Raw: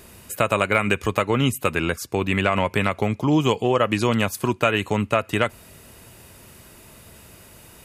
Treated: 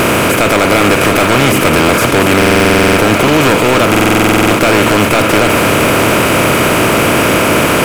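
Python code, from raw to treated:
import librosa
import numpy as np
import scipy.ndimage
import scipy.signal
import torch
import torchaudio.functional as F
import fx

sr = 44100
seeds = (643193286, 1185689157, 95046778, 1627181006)

p1 = fx.bin_compress(x, sr, power=0.2)
p2 = fx.leveller(p1, sr, passes=5)
p3 = p2 + fx.echo_single(p2, sr, ms=699, db=-8.0, dry=0)
p4 = fx.buffer_glitch(p3, sr, at_s=(2.37, 3.9), block=2048, repeats=12)
y = p4 * 10.0 ** (-10.5 / 20.0)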